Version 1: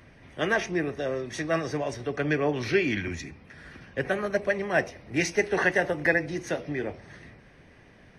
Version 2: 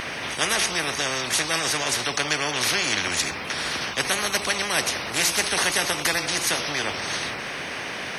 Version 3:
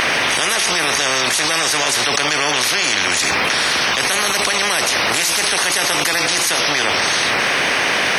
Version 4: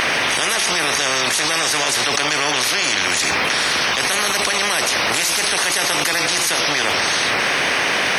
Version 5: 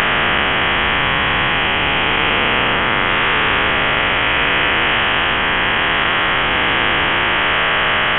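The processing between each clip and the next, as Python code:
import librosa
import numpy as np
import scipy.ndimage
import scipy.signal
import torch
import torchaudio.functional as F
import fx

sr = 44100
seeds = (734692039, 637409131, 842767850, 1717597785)

y1 = fx.highpass(x, sr, hz=1500.0, slope=6)
y1 = fx.spectral_comp(y1, sr, ratio=4.0)
y1 = y1 * librosa.db_to_amplitude(7.0)
y2 = fx.low_shelf(y1, sr, hz=250.0, db=-9.0)
y2 = fx.env_flatten(y2, sr, amount_pct=100)
y2 = y2 * librosa.db_to_amplitude(2.5)
y3 = y2 + 10.0 ** (-15.5 / 20.0) * np.pad(y2, (int(430 * sr / 1000.0), 0))[:len(y2)]
y3 = y3 * librosa.db_to_amplitude(-1.5)
y4 = fx.spec_dilate(y3, sr, span_ms=480)
y4 = fx.highpass(y4, sr, hz=240.0, slope=6)
y4 = fx.freq_invert(y4, sr, carrier_hz=3600)
y4 = y4 * librosa.db_to_amplitude(-2.0)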